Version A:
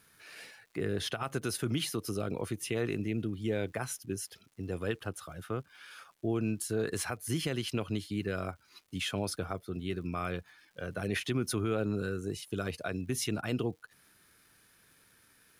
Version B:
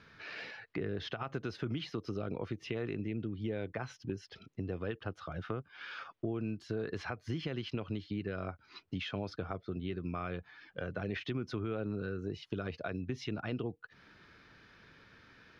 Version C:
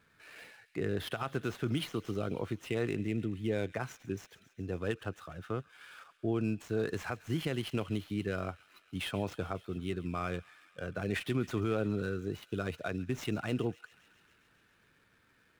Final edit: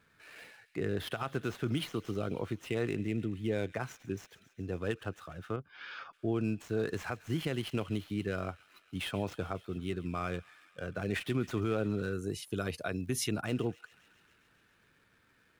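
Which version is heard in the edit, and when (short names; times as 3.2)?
C
5.56–6.13 from B
12.13–13.45 from A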